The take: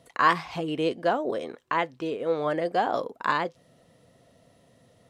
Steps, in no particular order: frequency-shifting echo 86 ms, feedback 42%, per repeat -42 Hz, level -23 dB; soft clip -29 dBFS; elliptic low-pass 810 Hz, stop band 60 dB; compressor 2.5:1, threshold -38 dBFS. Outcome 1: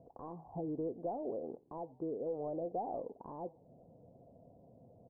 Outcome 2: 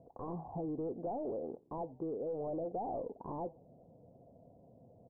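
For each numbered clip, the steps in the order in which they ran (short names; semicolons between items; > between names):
compressor > soft clip > frequency-shifting echo > elliptic low-pass; soft clip > elliptic low-pass > compressor > frequency-shifting echo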